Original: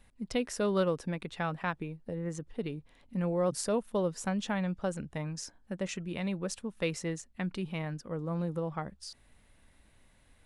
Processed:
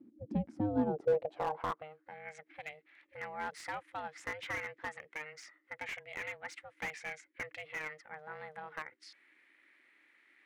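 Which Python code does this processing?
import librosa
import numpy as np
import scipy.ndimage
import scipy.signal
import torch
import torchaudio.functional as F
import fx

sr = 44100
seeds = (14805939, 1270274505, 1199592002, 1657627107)

y = x * np.sin(2.0 * np.pi * 310.0 * np.arange(len(x)) / sr)
y = fx.filter_sweep_bandpass(y, sr, from_hz=230.0, to_hz=2000.0, start_s=0.55, end_s=2.2, q=5.4)
y = fx.slew_limit(y, sr, full_power_hz=6.0)
y = y * librosa.db_to_amplitude(14.5)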